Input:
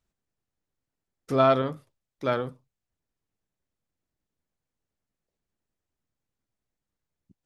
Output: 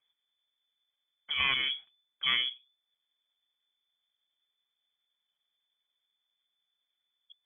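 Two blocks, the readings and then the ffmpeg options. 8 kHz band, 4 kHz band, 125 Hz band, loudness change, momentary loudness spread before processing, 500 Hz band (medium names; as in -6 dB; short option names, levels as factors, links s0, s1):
no reading, +14.5 dB, -22.0 dB, -4.0 dB, 12 LU, -31.5 dB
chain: -af "asuperstop=centerf=660:order=4:qfactor=1.2,lowpass=f=3000:t=q:w=0.5098,lowpass=f=3000:t=q:w=0.6013,lowpass=f=3000:t=q:w=0.9,lowpass=f=3000:t=q:w=2.563,afreqshift=-3500,afftfilt=real='re*lt(hypot(re,im),0.251)':imag='im*lt(hypot(re,im),0.251)':win_size=1024:overlap=0.75,volume=1.33"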